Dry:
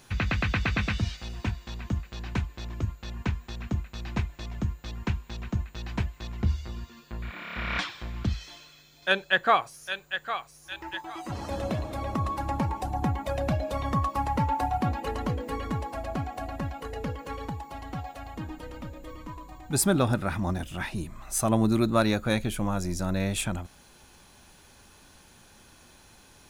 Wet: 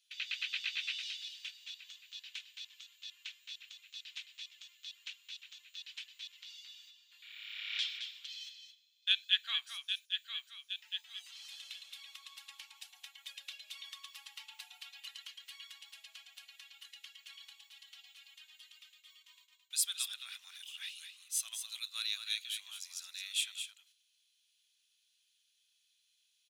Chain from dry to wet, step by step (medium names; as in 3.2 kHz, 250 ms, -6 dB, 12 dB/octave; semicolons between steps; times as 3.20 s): gate -42 dBFS, range -15 dB; ladder high-pass 2.8 kHz, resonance 55%; on a send: delay 217 ms -8 dB; on the sum: trim +3.5 dB